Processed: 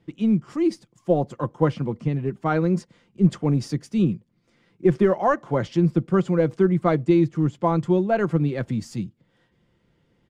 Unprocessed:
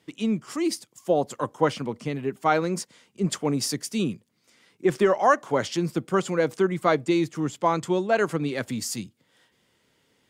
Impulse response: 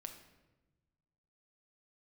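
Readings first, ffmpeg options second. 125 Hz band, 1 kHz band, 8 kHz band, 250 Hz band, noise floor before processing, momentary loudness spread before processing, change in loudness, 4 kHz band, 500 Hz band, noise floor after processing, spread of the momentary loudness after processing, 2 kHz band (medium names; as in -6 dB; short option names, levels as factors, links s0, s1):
+9.0 dB, -2.0 dB, under -10 dB, +5.5 dB, -68 dBFS, 9 LU, +3.0 dB, -9.0 dB, +1.5 dB, -67 dBFS, 8 LU, -4.0 dB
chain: -af "acrusher=bits=8:mode=log:mix=0:aa=0.000001,aemphasis=mode=reproduction:type=riaa,aecho=1:1:5.8:0.31,volume=0.75"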